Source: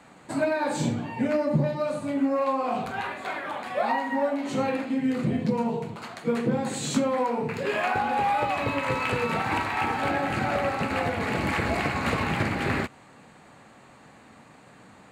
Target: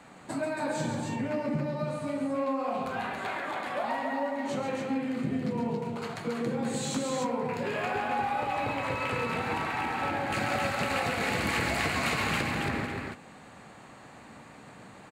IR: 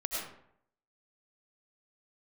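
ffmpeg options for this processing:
-filter_complex "[0:a]acompressor=threshold=-35dB:ratio=2,asettb=1/sr,asplit=3[link_01][link_02][link_03];[link_01]atrim=end=10.324[link_04];[link_02]atrim=start=10.32:end=12.41,asetpts=PTS-STARTPTS,afade=type=in:duration=0.004:curve=qsin,afade=type=out:start_time=2.086:duration=0.004:curve=qsin,highshelf=frequency=2400:gain=11[link_05];[link_03]atrim=start=12.406[link_06];[link_04][link_05]acrossfade=duration=0.004:curve1=hsin:curve2=qsin[link_07];[link_07][link_06]acrossfade=duration=0.004:curve1=qsin:curve2=hsin,aecho=1:1:137|277:0.447|0.631"

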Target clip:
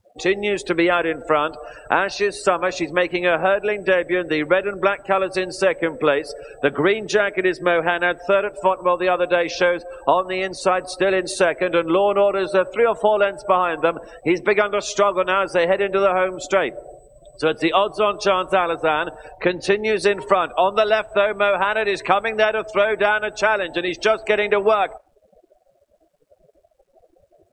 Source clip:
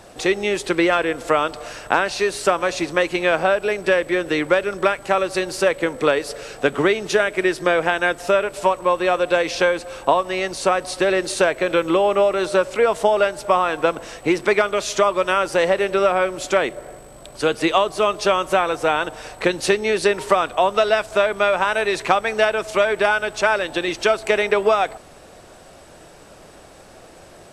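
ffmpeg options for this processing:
ffmpeg -i in.wav -filter_complex "[0:a]asettb=1/sr,asplit=3[link_01][link_02][link_03];[link_01]atrim=end=19.314[link_04];[link_02]atrim=start=19.31:end=19.84,asetpts=PTS-STARTPTS,afade=type=in:duration=0.004:curve=qsin,afade=type=out:start_time=0.526:duration=0.004:curve=qsin,highshelf=frequency=6400:gain=-9.5[link_05];[link_03]atrim=start=19.836[link_06];[link_04][link_05]acrossfade=duration=0.004:curve1=hsin:curve2=qsin[link_07];[link_07][link_06]acrossfade=duration=0.004:curve1=qsin:curve2=hsin,acrusher=bits=6:mix=0:aa=0.000001,afftdn=noise_reduction=33:noise_floor=-33" out.wav

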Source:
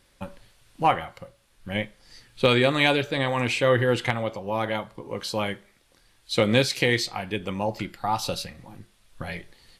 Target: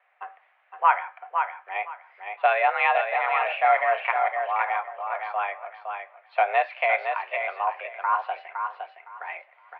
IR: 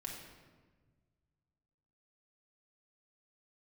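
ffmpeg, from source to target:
-filter_complex "[0:a]asplit=2[link_01][link_02];[link_02]aecho=0:1:512|1024|1536:0.501|0.105|0.0221[link_03];[link_01][link_03]amix=inputs=2:normalize=0,highpass=frequency=430:width_type=q:width=0.5412,highpass=frequency=430:width_type=q:width=1.307,lowpass=frequency=2200:width_type=q:width=0.5176,lowpass=frequency=2200:width_type=q:width=0.7071,lowpass=frequency=2200:width_type=q:width=1.932,afreqshift=200,volume=2dB"

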